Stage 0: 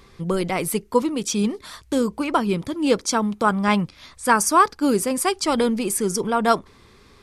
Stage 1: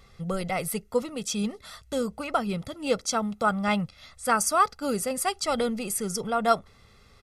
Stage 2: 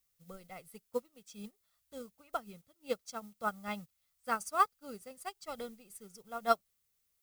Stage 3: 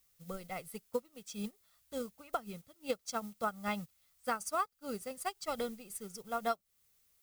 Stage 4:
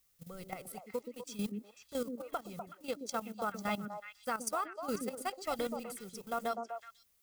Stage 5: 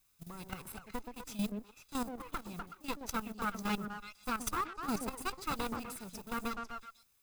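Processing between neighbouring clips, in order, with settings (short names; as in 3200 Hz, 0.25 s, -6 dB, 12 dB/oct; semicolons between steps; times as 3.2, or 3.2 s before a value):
comb 1.5 ms, depth 66%; gain -6.5 dB
added noise blue -42 dBFS; upward expander 2.5:1, over -38 dBFS; gain -4.5 dB
compressor 8:1, threshold -38 dBFS, peak gain reduction 16.5 dB; gain +7 dB
level quantiser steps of 13 dB; delay with a stepping band-pass 0.124 s, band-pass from 290 Hz, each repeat 1.4 oct, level -1.5 dB; gain +5.5 dB
minimum comb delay 0.79 ms; gain +2 dB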